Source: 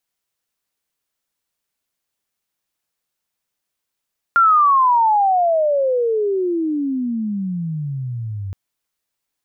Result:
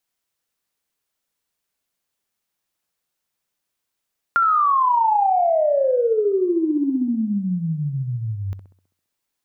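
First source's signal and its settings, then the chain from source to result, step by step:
chirp logarithmic 1400 Hz -> 94 Hz -9 dBFS -> -24 dBFS 4.17 s
compressor, threshold -16 dBFS; tape echo 65 ms, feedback 63%, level -8 dB, low-pass 1300 Hz

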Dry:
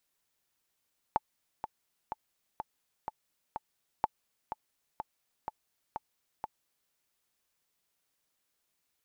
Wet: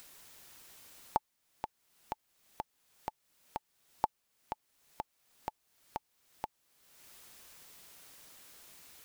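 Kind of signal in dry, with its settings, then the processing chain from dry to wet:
metronome 125 bpm, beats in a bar 6, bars 2, 867 Hz, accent 10 dB -13 dBFS
upward compressor, threshold -36 dBFS

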